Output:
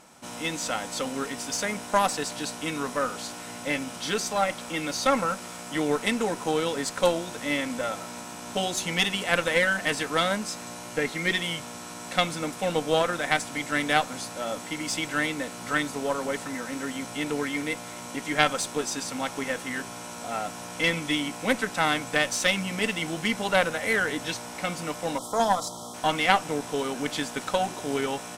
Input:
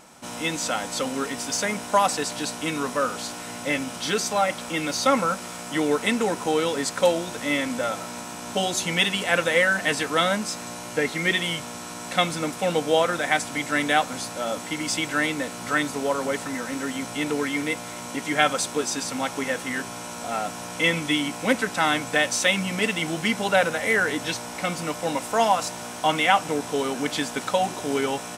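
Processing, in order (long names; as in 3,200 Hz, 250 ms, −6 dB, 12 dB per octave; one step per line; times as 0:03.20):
time-frequency box erased 0:25.18–0:25.94, 1,400–3,000 Hz
harmonic generator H 2 −7 dB, 6 −44 dB, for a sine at −3 dBFS
level −3.5 dB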